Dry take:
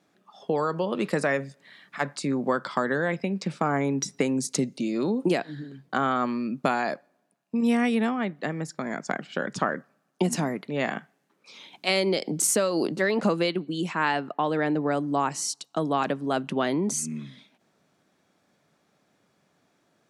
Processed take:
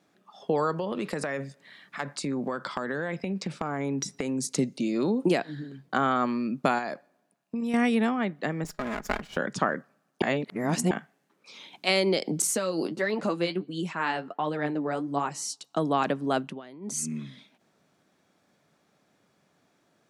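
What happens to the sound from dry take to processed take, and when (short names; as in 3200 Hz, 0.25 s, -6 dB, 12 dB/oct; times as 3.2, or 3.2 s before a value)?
0.71–4.58 compressor, threshold -26 dBFS
6.78–7.74 compressor 4:1, threshold -28 dBFS
8.64–9.37 minimum comb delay 4.8 ms
10.22–10.91 reverse
12.42–15.63 flange 1.4 Hz, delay 4.7 ms, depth 8.2 ms, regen +40%
16.37–17.04 dip -20.5 dB, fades 0.24 s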